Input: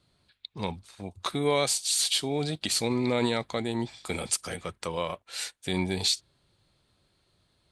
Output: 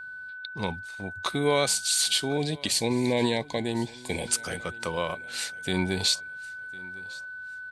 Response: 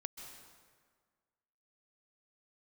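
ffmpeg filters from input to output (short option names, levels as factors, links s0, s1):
-filter_complex "[0:a]aeval=exprs='val(0)+0.0112*sin(2*PI*1500*n/s)':c=same,asettb=1/sr,asplit=3[s0][s1][s2];[s0]atrim=end=2.374[s3];[s1]atrim=start=2.37:end=4.28,asetpts=PTS-STARTPTS,afade=t=in:d=0.004:c=qsin,afade=t=out:st=1.906:d=0.004:c=qsin,asuperstop=centerf=1300:order=20:qfactor=3[s4];[s2]atrim=start=4.276[s5];[s3][s4]acrossfade=d=0.004:c1=hsin:c2=qsin[s6];[s6][s5]acrossfade=d=0.004:c1=qsin:c2=hsin,aecho=1:1:1054|2108:0.075|0.0262,volume=1.19"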